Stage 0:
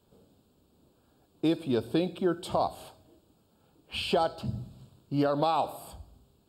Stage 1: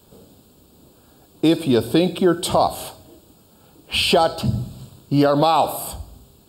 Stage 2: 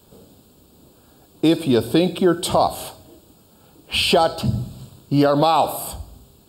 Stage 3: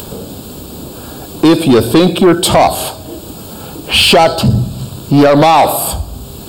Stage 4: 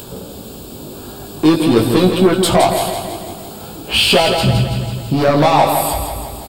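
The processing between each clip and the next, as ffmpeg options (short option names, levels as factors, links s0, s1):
-filter_complex "[0:a]highshelf=f=5400:g=8.5,asplit=2[s0][s1];[s1]alimiter=limit=0.0631:level=0:latency=1:release=25,volume=1[s2];[s0][s2]amix=inputs=2:normalize=0,volume=2.24"
-af anull
-filter_complex "[0:a]asplit=2[s0][s1];[s1]acompressor=mode=upward:threshold=0.0631:ratio=2.5,volume=1.26[s2];[s0][s2]amix=inputs=2:normalize=0,asoftclip=type=tanh:threshold=0.355,volume=2.11"
-filter_complex "[0:a]flanger=delay=16:depth=4.2:speed=0.45,asplit=2[s0][s1];[s1]aecho=0:1:165|330|495|660|825|990|1155:0.447|0.259|0.15|0.0872|0.0505|0.0293|0.017[s2];[s0][s2]amix=inputs=2:normalize=0,volume=0.794"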